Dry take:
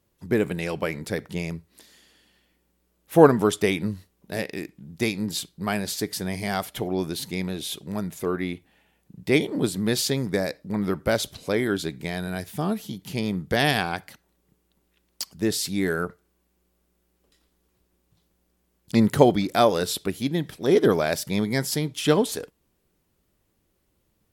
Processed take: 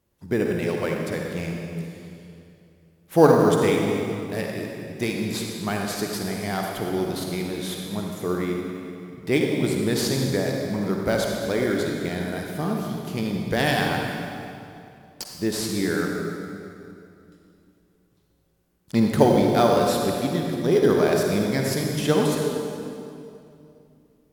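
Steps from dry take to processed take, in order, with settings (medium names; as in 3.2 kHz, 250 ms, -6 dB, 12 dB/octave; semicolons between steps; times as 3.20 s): reverberation RT60 2.6 s, pre-delay 43 ms, DRR 0 dB; in parallel at -11.5 dB: sample-rate reducer 5.3 kHz, jitter 0%; on the sum: trim -3.5 dB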